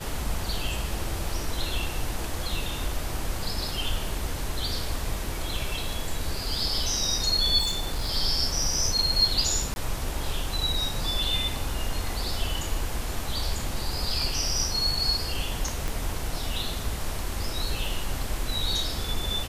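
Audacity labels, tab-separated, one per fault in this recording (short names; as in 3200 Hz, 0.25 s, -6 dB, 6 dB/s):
7.590000	8.110000	clipped -23 dBFS
9.740000	9.760000	gap 21 ms
15.880000	15.880000	pop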